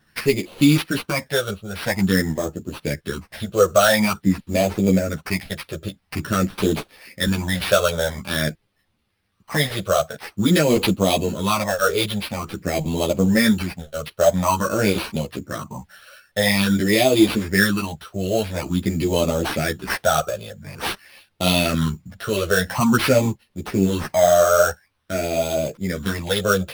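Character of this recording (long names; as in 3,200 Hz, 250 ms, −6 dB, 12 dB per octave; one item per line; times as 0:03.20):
phaser sweep stages 8, 0.48 Hz, lowest notch 260–1,600 Hz
aliases and images of a low sample rate 7,100 Hz, jitter 0%
a shimmering, thickened sound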